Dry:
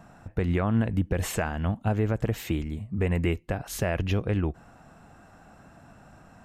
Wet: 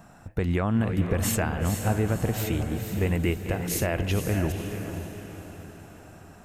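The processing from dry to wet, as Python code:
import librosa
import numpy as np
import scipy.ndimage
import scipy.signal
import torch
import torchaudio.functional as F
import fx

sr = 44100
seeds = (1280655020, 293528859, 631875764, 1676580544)

y = fx.reverse_delay(x, sr, ms=377, wet_db=-10.5)
y = fx.high_shelf(y, sr, hz=6400.0, db=9.5)
y = fx.echo_diffused(y, sr, ms=501, feedback_pct=47, wet_db=-8)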